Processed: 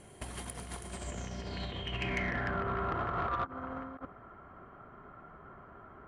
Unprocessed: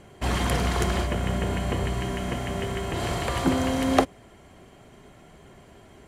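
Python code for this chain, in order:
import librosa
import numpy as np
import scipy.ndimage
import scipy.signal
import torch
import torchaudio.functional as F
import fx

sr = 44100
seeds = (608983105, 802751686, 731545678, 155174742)

y = fx.over_compress(x, sr, threshold_db=-29.0, ratio=-0.5)
y = fx.filter_sweep_lowpass(y, sr, from_hz=10000.0, to_hz=1300.0, start_s=0.84, end_s=2.63, q=7.6)
y = 10.0 ** (-15.5 / 20.0) * np.tanh(y / 10.0 ** (-15.5 / 20.0))
y = F.gain(torch.from_numpy(y), -9.0).numpy()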